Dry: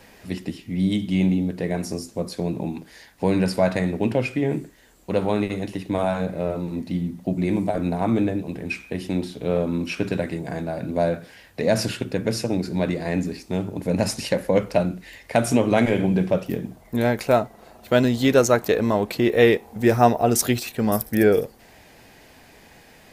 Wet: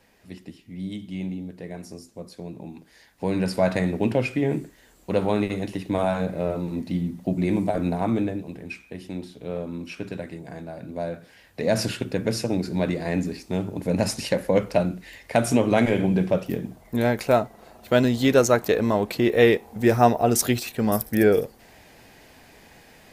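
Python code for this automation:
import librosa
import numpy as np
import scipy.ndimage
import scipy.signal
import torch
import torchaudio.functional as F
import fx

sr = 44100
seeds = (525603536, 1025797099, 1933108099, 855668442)

y = fx.gain(x, sr, db=fx.line((2.62, -11.0), (3.73, -0.5), (7.88, -0.5), (8.83, -8.5), (11.06, -8.5), (11.82, -1.0)))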